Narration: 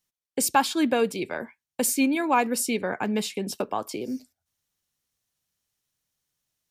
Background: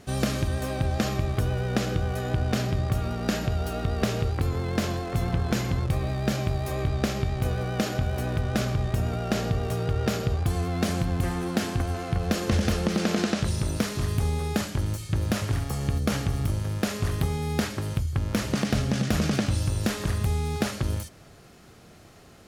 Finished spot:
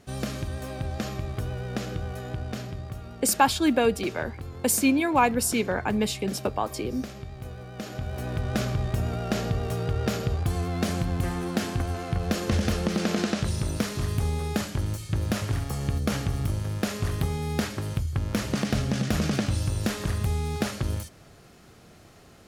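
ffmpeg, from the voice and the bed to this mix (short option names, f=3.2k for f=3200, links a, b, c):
-filter_complex "[0:a]adelay=2850,volume=1dB[a];[1:a]volume=5.5dB,afade=t=out:st=2.07:d=0.96:silence=0.473151,afade=t=in:st=7.73:d=0.81:silence=0.281838[b];[a][b]amix=inputs=2:normalize=0"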